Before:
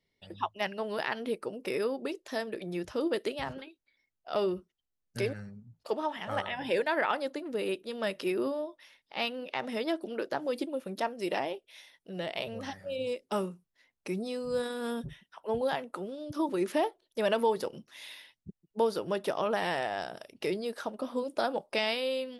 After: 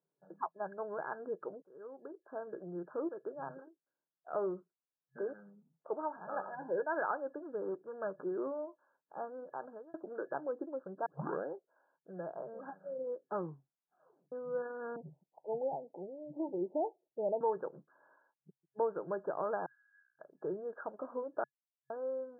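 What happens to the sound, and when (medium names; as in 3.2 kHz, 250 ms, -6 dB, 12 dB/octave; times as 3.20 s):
1.62–2.56 s: fade in
3.09–3.49 s: fade in equal-power, from -13 dB
5.31–5.96 s: resonant high shelf 3 kHz +11.5 dB, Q 3
7.62–8.24 s: sliding maximum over 5 samples
9.51–9.94 s: fade out
11.06 s: tape start 0.48 s
13.36 s: tape stop 0.96 s
14.96–17.41 s: steep low-pass 870 Hz 96 dB/octave
18.16–18.79 s: bass shelf 260 Hz -9.5 dB
19.66–20.19 s: Chebyshev band-pass 1.9–8.8 kHz, order 5
21.44–21.90 s: mute
whole clip: FFT band-pass 130–1700 Hz; peaking EQ 230 Hz -11 dB 0.41 oct; trim -5 dB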